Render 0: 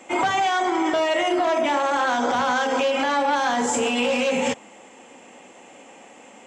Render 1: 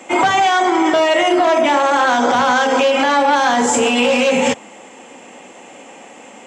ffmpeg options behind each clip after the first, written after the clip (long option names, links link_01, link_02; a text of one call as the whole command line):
ffmpeg -i in.wav -af "highpass=73,volume=7.5dB" out.wav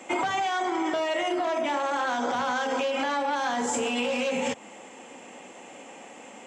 ffmpeg -i in.wav -af "acompressor=threshold=-18dB:ratio=6,volume=-6.5dB" out.wav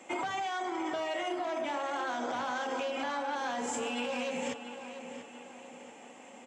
ffmpeg -i in.wav -filter_complex "[0:a]asplit=2[link_01][link_02];[link_02]adelay=687,lowpass=frequency=4700:poles=1,volume=-10dB,asplit=2[link_03][link_04];[link_04]adelay=687,lowpass=frequency=4700:poles=1,volume=0.46,asplit=2[link_05][link_06];[link_06]adelay=687,lowpass=frequency=4700:poles=1,volume=0.46,asplit=2[link_07][link_08];[link_08]adelay=687,lowpass=frequency=4700:poles=1,volume=0.46,asplit=2[link_09][link_10];[link_10]adelay=687,lowpass=frequency=4700:poles=1,volume=0.46[link_11];[link_01][link_03][link_05][link_07][link_09][link_11]amix=inputs=6:normalize=0,volume=-7.5dB" out.wav